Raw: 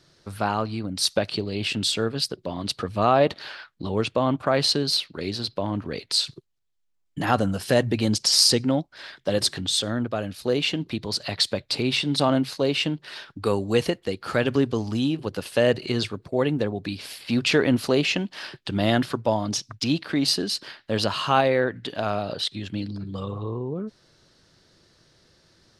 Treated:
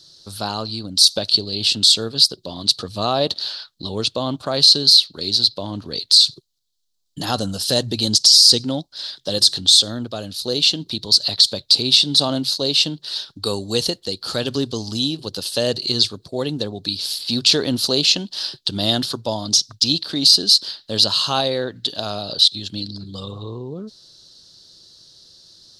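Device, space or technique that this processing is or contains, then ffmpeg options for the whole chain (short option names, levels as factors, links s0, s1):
over-bright horn tweeter: -af "highshelf=f=3000:t=q:w=3:g=11,alimiter=limit=0.944:level=0:latency=1:release=25,volume=0.891"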